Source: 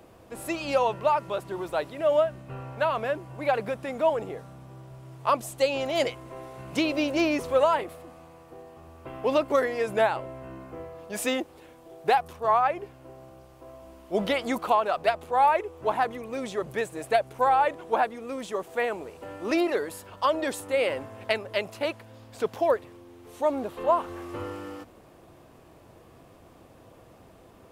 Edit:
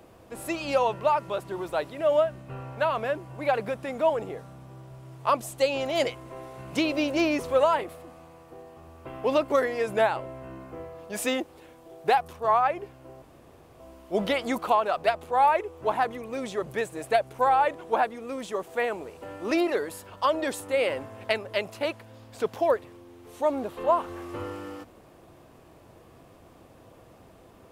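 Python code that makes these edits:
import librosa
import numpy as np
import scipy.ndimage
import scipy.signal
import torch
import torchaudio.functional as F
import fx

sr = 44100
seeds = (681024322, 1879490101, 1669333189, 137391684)

y = fx.edit(x, sr, fx.room_tone_fill(start_s=13.22, length_s=0.58), tone=tone)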